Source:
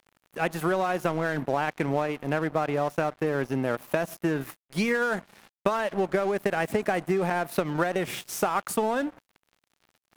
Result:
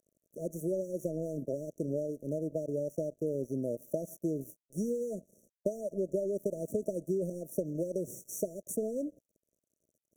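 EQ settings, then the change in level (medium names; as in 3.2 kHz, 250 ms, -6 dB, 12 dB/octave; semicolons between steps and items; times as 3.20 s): brick-wall FIR band-stop 660–5600 Hz; bass shelf 110 Hz -6 dB; -5.5 dB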